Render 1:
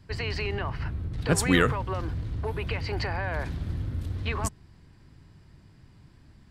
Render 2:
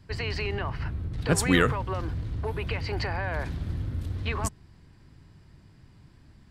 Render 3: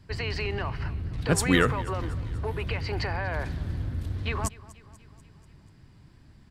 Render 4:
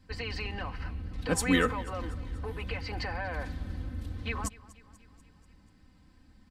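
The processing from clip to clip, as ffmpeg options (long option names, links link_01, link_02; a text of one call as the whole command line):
ffmpeg -i in.wav -af anull out.wav
ffmpeg -i in.wav -af "aecho=1:1:243|486|729|972|1215:0.1|0.057|0.0325|0.0185|0.0106" out.wav
ffmpeg -i in.wav -af "aecho=1:1:3.9:0.78,volume=-6dB" out.wav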